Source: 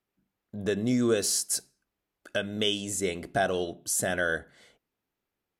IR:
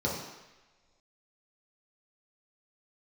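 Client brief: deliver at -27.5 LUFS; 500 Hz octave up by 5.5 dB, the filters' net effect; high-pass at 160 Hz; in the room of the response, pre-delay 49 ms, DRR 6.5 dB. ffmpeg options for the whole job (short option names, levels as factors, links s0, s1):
-filter_complex "[0:a]highpass=160,equalizer=f=500:t=o:g=7,asplit=2[s0][s1];[1:a]atrim=start_sample=2205,adelay=49[s2];[s1][s2]afir=irnorm=-1:irlink=0,volume=0.178[s3];[s0][s3]amix=inputs=2:normalize=0,volume=0.668"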